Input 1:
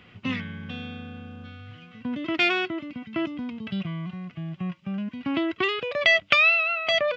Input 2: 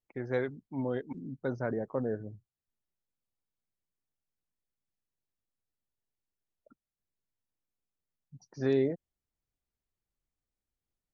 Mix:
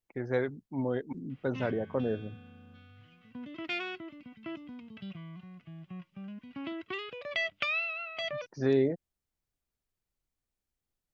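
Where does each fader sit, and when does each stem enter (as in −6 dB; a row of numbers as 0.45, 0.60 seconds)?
−13.0, +1.5 decibels; 1.30, 0.00 seconds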